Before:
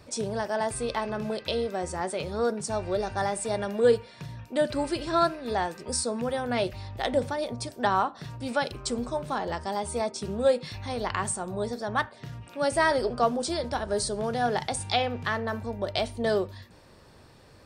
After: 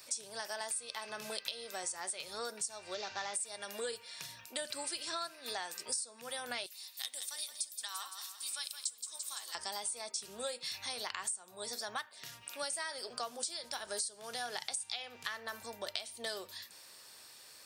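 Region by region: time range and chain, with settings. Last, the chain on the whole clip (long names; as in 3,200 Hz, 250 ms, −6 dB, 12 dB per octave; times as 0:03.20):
0:02.94–0:03.34: variable-slope delta modulation 32 kbit/s + high-frequency loss of the air 71 metres
0:06.66–0:09.55: first difference + hollow resonant body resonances 310/1,100/3,700 Hz, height 8 dB + repeating echo 169 ms, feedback 49%, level −10.5 dB
whole clip: first difference; downward compressor 8 to 1, threshold −47 dBFS; level +11 dB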